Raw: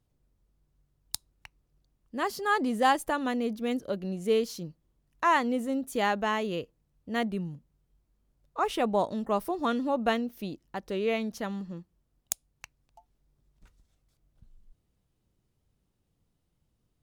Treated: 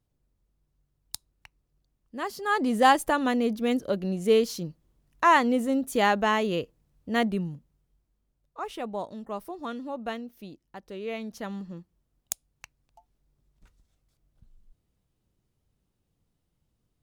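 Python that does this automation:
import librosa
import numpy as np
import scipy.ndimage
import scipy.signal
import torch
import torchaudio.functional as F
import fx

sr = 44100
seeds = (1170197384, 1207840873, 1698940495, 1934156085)

y = fx.gain(x, sr, db=fx.line((2.35, -2.5), (2.76, 4.5), (7.3, 4.5), (8.6, -7.0), (10.99, -7.0), (11.55, -0.5)))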